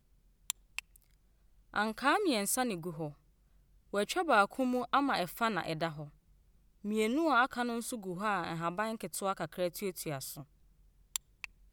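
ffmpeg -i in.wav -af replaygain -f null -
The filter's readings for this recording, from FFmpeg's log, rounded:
track_gain = +13.7 dB
track_peak = 0.145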